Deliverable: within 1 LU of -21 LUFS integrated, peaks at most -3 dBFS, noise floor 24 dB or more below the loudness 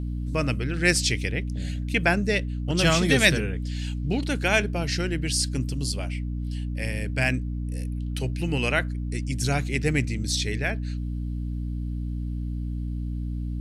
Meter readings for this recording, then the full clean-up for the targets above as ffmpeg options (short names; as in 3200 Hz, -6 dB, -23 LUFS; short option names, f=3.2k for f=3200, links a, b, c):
hum 60 Hz; harmonics up to 300 Hz; hum level -27 dBFS; loudness -26.0 LUFS; peak -3.0 dBFS; loudness target -21.0 LUFS
-> -af "bandreject=f=60:t=h:w=4,bandreject=f=120:t=h:w=4,bandreject=f=180:t=h:w=4,bandreject=f=240:t=h:w=4,bandreject=f=300:t=h:w=4"
-af "volume=5dB,alimiter=limit=-3dB:level=0:latency=1"